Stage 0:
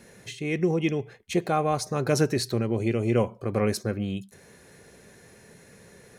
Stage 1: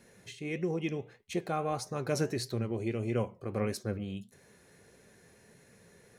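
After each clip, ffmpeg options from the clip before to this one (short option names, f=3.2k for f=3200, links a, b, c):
-af "flanger=delay=6.8:depth=5.9:regen=78:speed=1.6:shape=triangular,volume=-3.5dB"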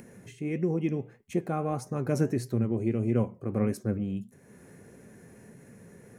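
-af "equalizer=f=125:t=o:w=1:g=5,equalizer=f=250:t=o:w=1:g=8,equalizer=f=4k:t=o:w=1:g=-12,acompressor=mode=upward:threshold=-44dB:ratio=2.5"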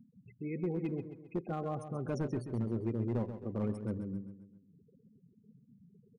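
-af "afftfilt=real='re*gte(hypot(re,im),0.0178)':imag='im*gte(hypot(re,im),0.0178)':win_size=1024:overlap=0.75,asoftclip=type=hard:threshold=-20.5dB,aecho=1:1:133|266|399|532|665:0.316|0.145|0.0669|0.0308|0.0142,volume=-7dB"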